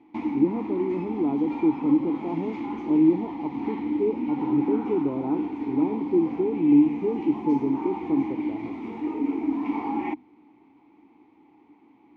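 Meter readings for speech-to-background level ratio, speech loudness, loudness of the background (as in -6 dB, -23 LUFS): 5.0 dB, -25.5 LUFS, -30.5 LUFS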